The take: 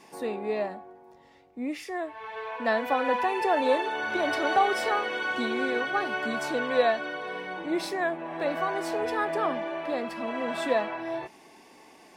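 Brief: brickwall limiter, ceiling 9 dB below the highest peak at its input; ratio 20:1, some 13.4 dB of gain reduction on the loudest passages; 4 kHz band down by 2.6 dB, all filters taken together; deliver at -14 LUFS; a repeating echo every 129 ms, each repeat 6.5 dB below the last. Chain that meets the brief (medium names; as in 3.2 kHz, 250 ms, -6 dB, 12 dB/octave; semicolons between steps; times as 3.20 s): peaking EQ 4 kHz -3.5 dB; compression 20:1, threshold -31 dBFS; peak limiter -30.5 dBFS; feedback delay 129 ms, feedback 47%, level -6.5 dB; trim +23.5 dB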